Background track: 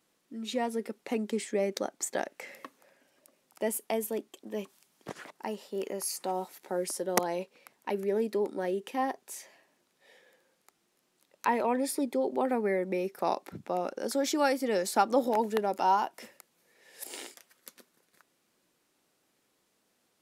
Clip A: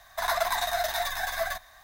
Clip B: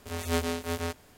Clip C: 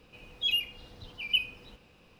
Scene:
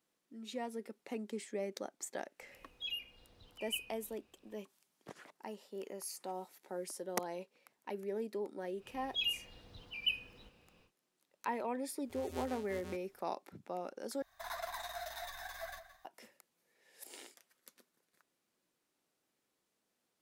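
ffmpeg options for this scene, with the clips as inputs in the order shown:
-filter_complex "[3:a]asplit=2[a][b];[0:a]volume=-10dB[c];[a]equalizer=f=140:w=1.5:g=-4[d];[1:a]asplit=2[e][f];[f]adelay=169.1,volume=-12dB,highshelf=f=4k:g=-3.8[g];[e][g]amix=inputs=2:normalize=0[h];[c]asplit=2[i][j];[i]atrim=end=14.224[k];[h]atrim=end=1.83,asetpts=PTS-STARTPTS,volume=-16dB[l];[j]atrim=start=16.046[m];[d]atrim=end=2.19,asetpts=PTS-STARTPTS,volume=-13dB,afade=t=in:d=0.004:c=hsin,afade=t=out:st=2.186:d=0.004:c=hsin,adelay=2390[n];[b]atrim=end=2.19,asetpts=PTS-STARTPTS,volume=-7dB,afade=t=in:d=0.1,afade=t=out:st=2.09:d=0.1,adelay=8730[o];[2:a]atrim=end=1.17,asetpts=PTS-STARTPTS,volume=-17dB,afade=t=in:d=0.004:c=hsin,afade=t=out:st=1.166:d=0.004:c=hsin,adelay=12040[p];[k][l]acrossfade=d=0.004:c1=hsin:c2=hsin[q];[q][m]acrossfade=d=0.004:c1=hsin:c2=hsin[r];[r][n][o][p]amix=inputs=4:normalize=0"

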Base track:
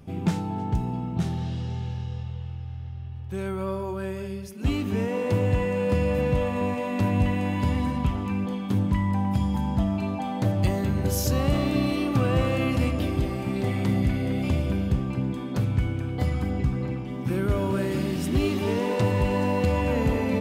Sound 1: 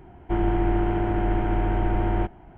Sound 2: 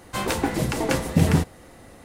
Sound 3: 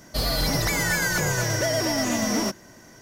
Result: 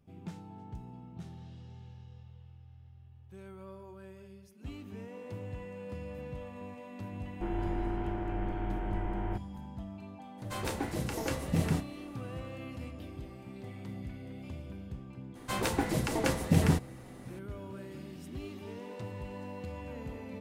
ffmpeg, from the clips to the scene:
-filter_complex "[2:a]asplit=2[a][b];[0:a]volume=-18.5dB[c];[a]asplit=2[d][e];[e]adelay=31,volume=-11dB[f];[d][f]amix=inputs=2:normalize=0[g];[1:a]atrim=end=2.57,asetpts=PTS-STARTPTS,volume=-11.5dB,afade=t=in:d=0.004:c=hsin,afade=t=out:st=2.566:d=0.004:c=hsin,adelay=7110[h];[g]atrim=end=2.04,asetpts=PTS-STARTPTS,volume=-11.5dB,afade=t=in:d=0.02,afade=t=out:st=2.02:d=0.02,adelay=10370[i];[b]atrim=end=2.04,asetpts=PTS-STARTPTS,volume=-6.5dB,afade=t=in:d=0.004:c=hsin,afade=t=out:st=2.036:d=0.004:c=hsin,adelay=15350[j];[c][h][i][j]amix=inputs=4:normalize=0"

